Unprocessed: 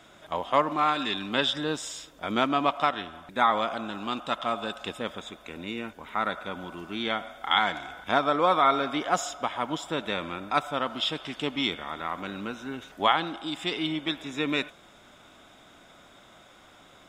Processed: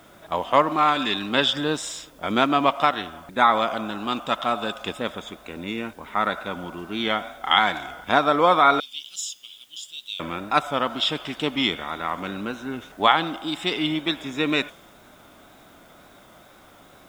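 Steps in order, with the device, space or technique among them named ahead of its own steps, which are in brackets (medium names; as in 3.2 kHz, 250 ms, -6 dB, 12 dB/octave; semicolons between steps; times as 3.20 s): 8.80–10.20 s: elliptic high-pass 2.9 kHz, stop band 40 dB; plain cassette with noise reduction switched in (tape noise reduction on one side only decoder only; wow and flutter; white noise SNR 36 dB); trim +5 dB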